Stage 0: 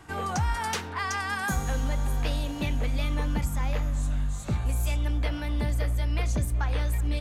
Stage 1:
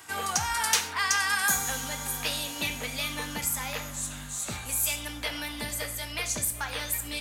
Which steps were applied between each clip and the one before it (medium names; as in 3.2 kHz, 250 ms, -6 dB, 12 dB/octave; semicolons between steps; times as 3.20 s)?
tilt EQ +4 dB/octave; gated-style reverb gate 170 ms falling, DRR 7.5 dB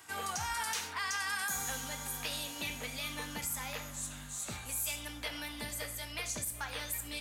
peak limiter -19 dBFS, peak gain reduction 9.5 dB; trim -6.5 dB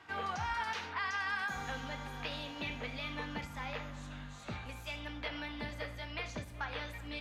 distance through air 270 m; trim +2.5 dB